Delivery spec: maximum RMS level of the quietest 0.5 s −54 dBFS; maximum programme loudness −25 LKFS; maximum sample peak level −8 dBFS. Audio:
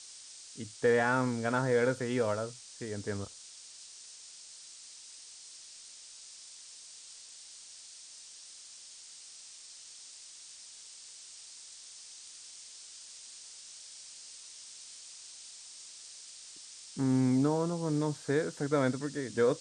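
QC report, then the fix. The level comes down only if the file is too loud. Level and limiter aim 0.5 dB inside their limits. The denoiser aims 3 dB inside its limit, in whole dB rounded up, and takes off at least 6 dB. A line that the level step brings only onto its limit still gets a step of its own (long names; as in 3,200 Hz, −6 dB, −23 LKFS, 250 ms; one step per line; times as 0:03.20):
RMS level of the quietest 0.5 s −51 dBFS: out of spec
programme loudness −31.5 LKFS: in spec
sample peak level −15.0 dBFS: in spec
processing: broadband denoise 6 dB, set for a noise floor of −51 dBFS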